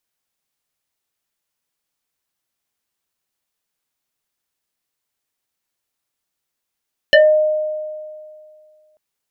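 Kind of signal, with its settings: FM tone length 1.84 s, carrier 615 Hz, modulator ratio 1.93, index 2.4, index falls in 0.26 s exponential, decay 2.21 s, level -5 dB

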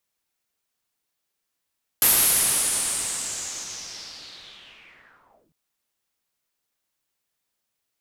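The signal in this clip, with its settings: swept filtered noise white, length 3.50 s lowpass, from 12000 Hz, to 140 Hz, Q 4.2, linear, gain ramp -35.5 dB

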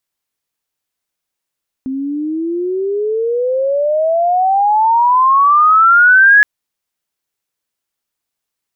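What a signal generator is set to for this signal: chirp logarithmic 260 Hz -> 1700 Hz -17.5 dBFS -> -3.5 dBFS 4.57 s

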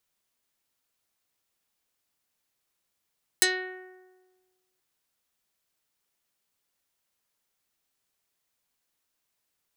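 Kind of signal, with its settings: plucked string F#4, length 1.38 s, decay 1.41 s, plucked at 0.32, dark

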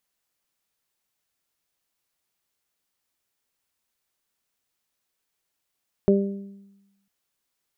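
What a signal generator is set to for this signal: additive tone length 1.00 s, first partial 198 Hz, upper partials 1.5/-7 dB, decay 1.05 s, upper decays 0.66/0.56 s, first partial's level -16 dB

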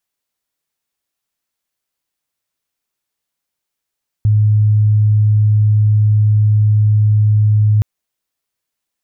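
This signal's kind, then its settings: tone sine 106 Hz -8 dBFS 3.57 s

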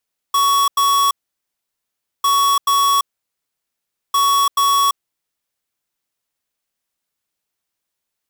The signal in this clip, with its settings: beep pattern square 1120 Hz, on 0.34 s, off 0.09 s, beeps 2, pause 1.13 s, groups 3, -14.5 dBFS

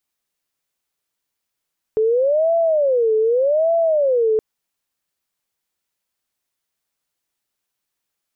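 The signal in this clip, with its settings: siren wail 435–670 Hz 0.84/s sine -13.5 dBFS 2.42 s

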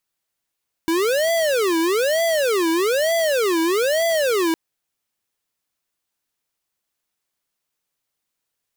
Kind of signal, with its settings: siren wail 325–670 Hz 1.1/s square -19 dBFS 3.66 s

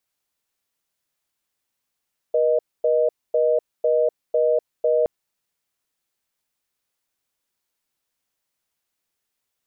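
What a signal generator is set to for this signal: call progress tone reorder tone, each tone -18.5 dBFS 2.72 s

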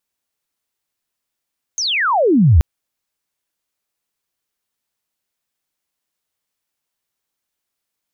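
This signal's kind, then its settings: chirp logarithmic 6600 Hz -> 66 Hz -17.5 dBFS -> -5.5 dBFS 0.83 s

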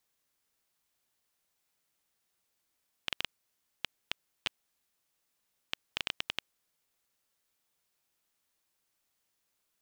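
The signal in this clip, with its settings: random clicks 4.6/s -12.5 dBFS 3.50 s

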